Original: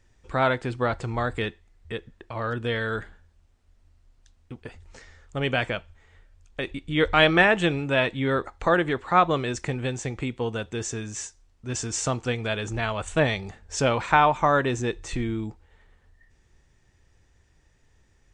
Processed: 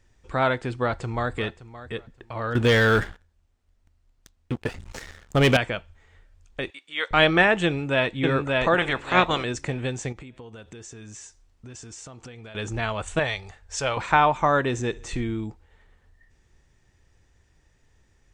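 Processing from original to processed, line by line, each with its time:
0.78–1.33 echo throw 0.57 s, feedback 20%, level -15 dB
2.55–5.57 sample leveller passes 3
6.7–7.11 HPF 950 Hz
7.65–8.17 echo throw 0.58 s, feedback 25%, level -1.5 dB
8.76–9.43 spectral limiter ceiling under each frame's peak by 17 dB
10.12–12.55 compressor 16:1, threshold -38 dBFS
13.19–13.97 bell 230 Hz -14.5 dB 1.6 oct
14.65–15.2 feedback echo 66 ms, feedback 59%, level -23 dB

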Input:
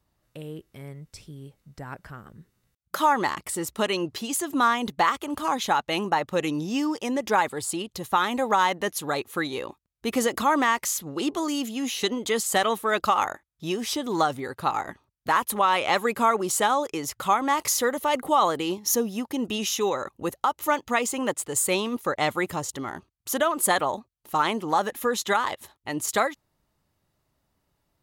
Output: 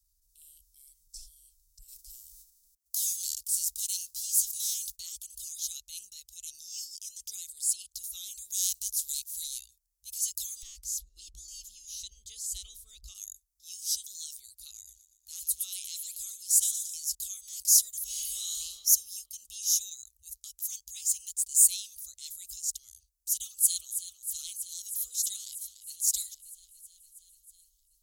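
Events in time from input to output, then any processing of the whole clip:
1.88–4.95 spectral whitening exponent 0.6
8.5–9.57 spectral contrast lowered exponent 0.67
10.62–13.15 RIAA curve playback
14.75–17.15 thin delay 0.12 s, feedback 52%, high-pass 2600 Hz, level -12 dB
18.05–18.55 reverb throw, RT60 1.8 s, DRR -7.5 dB
23.34–23.9 echo throw 0.32 s, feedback 80%, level -11 dB
25.4–25.97 echo throw 0.29 s, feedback 70%, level -13.5 dB
whole clip: inverse Chebyshev band-stop 130–1800 Hz, stop band 60 dB; bell 530 Hz -6 dB 1.1 oct; transient shaper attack -8 dB, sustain +2 dB; gain +8 dB

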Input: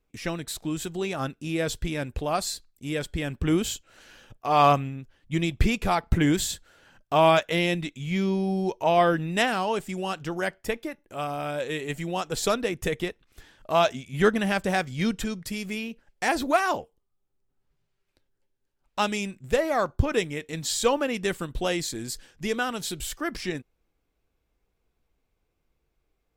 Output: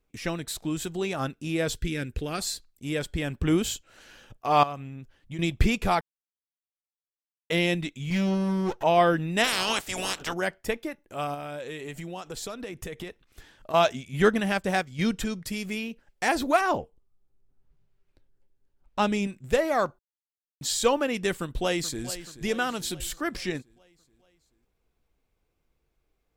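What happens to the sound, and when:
1.76–2.4 band shelf 810 Hz -11 dB 1.2 oct
4.63–5.39 compressor 3:1, threshold -36 dBFS
6.01–7.5 mute
8.1–8.83 minimum comb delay 5.9 ms
9.43–10.32 spectral limiter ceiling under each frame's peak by 27 dB
11.34–13.74 compressor, threshold -33 dBFS
14.4–14.99 upward expander, over -38 dBFS
16.61–19.27 tilt -2 dB/oct
19.99–20.61 mute
21.33–22.06 echo throw 0.43 s, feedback 55%, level -14 dB

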